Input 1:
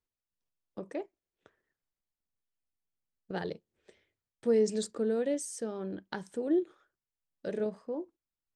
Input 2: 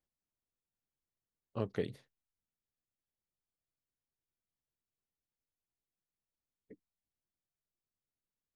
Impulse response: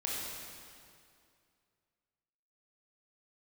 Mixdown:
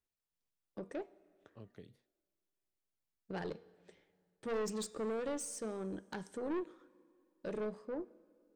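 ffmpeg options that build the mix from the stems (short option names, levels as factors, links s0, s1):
-filter_complex "[0:a]asoftclip=type=tanh:threshold=0.0251,volume=0.75,asplit=2[s0][s1];[s1]volume=0.0668[s2];[1:a]acrossover=split=320|3000[s3][s4][s5];[s4]acompressor=threshold=0.00794:ratio=6[s6];[s3][s6][s5]amix=inputs=3:normalize=0,volume=0.168[s7];[2:a]atrim=start_sample=2205[s8];[s2][s8]afir=irnorm=-1:irlink=0[s9];[s0][s7][s9]amix=inputs=3:normalize=0,bandreject=f=238.2:t=h:w=4,bandreject=f=476.4:t=h:w=4,bandreject=f=714.6:t=h:w=4,bandreject=f=952.8:t=h:w=4,bandreject=f=1191:t=h:w=4,bandreject=f=1429.2:t=h:w=4,bandreject=f=1667.4:t=h:w=4,bandreject=f=1905.6:t=h:w=4,bandreject=f=2143.8:t=h:w=4,bandreject=f=2382:t=h:w=4,bandreject=f=2620.2:t=h:w=4,bandreject=f=2858.4:t=h:w=4,bandreject=f=3096.6:t=h:w=4,bandreject=f=3334.8:t=h:w=4,bandreject=f=3573:t=h:w=4,bandreject=f=3811.2:t=h:w=4,bandreject=f=4049.4:t=h:w=4,bandreject=f=4287.6:t=h:w=4,bandreject=f=4525.8:t=h:w=4,bandreject=f=4764:t=h:w=4,bandreject=f=5002.2:t=h:w=4,bandreject=f=5240.4:t=h:w=4,bandreject=f=5478.6:t=h:w=4,bandreject=f=5716.8:t=h:w=4,bandreject=f=5955:t=h:w=4,bandreject=f=6193.2:t=h:w=4,bandreject=f=6431.4:t=h:w=4,bandreject=f=6669.6:t=h:w=4,bandreject=f=6907.8:t=h:w=4,aeval=exprs='0.0299*(cos(1*acos(clip(val(0)/0.0299,-1,1)))-cos(1*PI/2))+0.00531*(cos(2*acos(clip(val(0)/0.0299,-1,1)))-cos(2*PI/2))':c=same"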